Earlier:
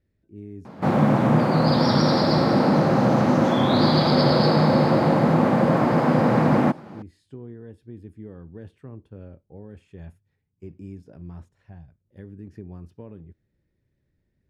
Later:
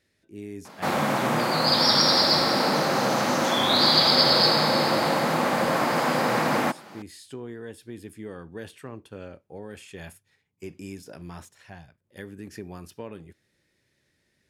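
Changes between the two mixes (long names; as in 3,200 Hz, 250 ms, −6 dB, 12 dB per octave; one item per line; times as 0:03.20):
speech +10.0 dB
master: add spectral tilt +4.5 dB per octave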